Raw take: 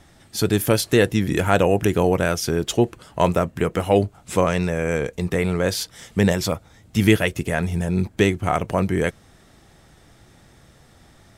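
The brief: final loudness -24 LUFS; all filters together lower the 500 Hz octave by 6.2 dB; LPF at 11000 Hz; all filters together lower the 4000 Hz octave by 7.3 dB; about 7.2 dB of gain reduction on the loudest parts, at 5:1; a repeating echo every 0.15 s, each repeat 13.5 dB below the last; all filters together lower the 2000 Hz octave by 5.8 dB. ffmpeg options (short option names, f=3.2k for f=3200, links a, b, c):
-af "lowpass=11k,equalizer=f=500:t=o:g=-7.5,equalizer=f=2k:t=o:g=-5,equalizer=f=4k:t=o:g=-8,acompressor=threshold=-22dB:ratio=5,aecho=1:1:150|300:0.211|0.0444,volume=4.5dB"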